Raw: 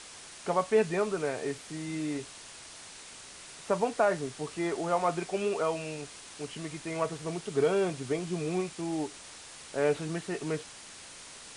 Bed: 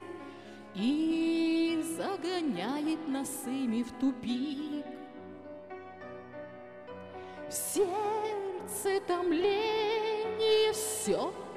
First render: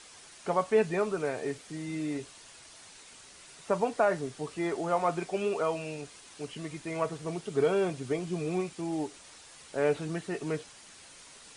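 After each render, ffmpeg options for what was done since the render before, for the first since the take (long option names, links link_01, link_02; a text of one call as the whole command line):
ffmpeg -i in.wav -af "afftdn=noise_reduction=6:noise_floor=-48" out.wav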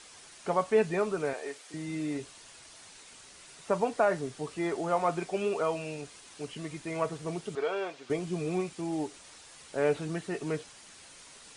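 ffmpeg -i in.wav -filter_complex "[0:a]asettb=1/sr,asplit=3[link_01][link_02][link_03];[link_01]atrim=end=1.334[link_04];[link_02]atrim=start=1.33:end=1.74,asetpts=PTS-STARTPTS,afade=type=in:duration=0.004:curve=qsin,afade=type=out:start_time=0.406:duration=0.004:curve=qsin,highpass=500[link_05];[link_03]atrim=start=1.736[link_06];[link_04][link_05]acrossfade=duration=0.004:curve1=hsin:curve2=qsin[link_07];[link_07][link_06]acrossfade=duration=0.004:curve1=qsin:curve2=hsin,asettb=1/sr,asplit=3[link_08][link_09][link_10];[link_08]atrim=end=7.554[link_11];[link_09]atrim=start=7.55:end=8.1,asetpts=PTS-STARTPTS,afade=type=in:duration=0.004:curve=qsin,afade=type=out:start_time=0.546:duration=0.004:curve=qsin,highpass=580,lowpass=4800[link_12];[link_10]atrim=start=8.096[link_13];[link_11][link_12]acrossfade=duration=0.004:curve1=hsin:curve2=qsin[link_14];[link_14][link_13]acrossfade=duration=0.004:curve1=qsin:curve2=hsin" out.wav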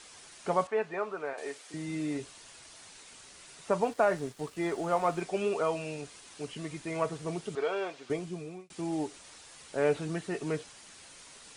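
ffmpeg -i in.wav -filter_complex "[0:a]asettb=1/sr,asplit=3[link_01][link_02][link_03];[link_01]atrim=end=0.674[link_04];[link_02]atrim=start=0.67:end=1.38,asetpts=PTS-STARTPTS,afade=type=in:duration=0.004:curve=qsin,afade=type=out:start_time=0.706:duration=0.004:curve=qsin,bandpass=frequency=1100:width_type=q:width=0.81[link_05];[link_03]atrim=start=1.376[link_06];[link_04][link_05]acrossfade=duration=0.004:curve1=hsin:curve2=qsin[link_07];[link_07][link_06]acrossfade=duration=0.004:curve1=qsin:curve2=hsin,asettb=1/sr,asplit=3[link_08][link_09][link_10];[link_08]atrim=end=3.834[link_11];[link_09]atrim=start=3.83:end=5.21,asetpts=PTS-STARTPTS,afade=type=in:duration=0.004:curve=qsin,afade=type=out:start_time=1.376:duration=0.004:curve=qsin,aeval=exprs='sgn(val(0))*max(abs(val(0))-0.00224,0)':channel_layout=same[link_12];[link_10]atrim=start=5.206[link_13];[link_11][link_12]acrossfade=duration=0.004:curve1=hsin:curve2=qsin[link_14];[link_14][link_13]acrossfade=duration=0.004:curve1=qsin:curve2=hsin,asplit=2[link_15][link_16];[link_15]atrim=end=8.7,asetpts=PTS-STARTPTS,afade=type=out:start_time=8.02:duration=0.68[link_17];[link_16]atrim=start=8.7,asetpts=PTS-STARTPTS,afade=type=in:duration=0.004:curve=hsin[link_18];[link_17][link_18]concat=n=2:v=0:a=1" out.wav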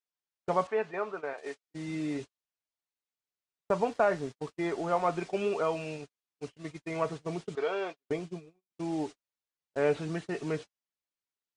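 ffmpeg -i in.wav -af "agate=range=-46dB:threshold=-38dB:ratio=16:detection=peak,lowpass=6400" out.wav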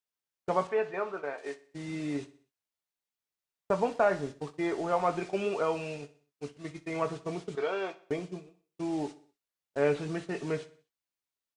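ffmpeg -i in.wav -filter_complex "[0:a]asplit=2[link_01][link_02];[link_02]adelay=21,volume=-10.5dB[link_03];[link_01][link_03]amix=inputs=2:normalize=0,aecho=1:1:62|124|186|248:0.133|0.0627|0.0295|0.0138" out.wav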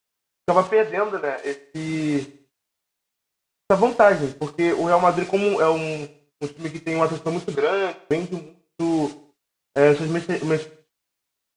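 ffmpeg -i in.wav -af "volume=11dB" out.wav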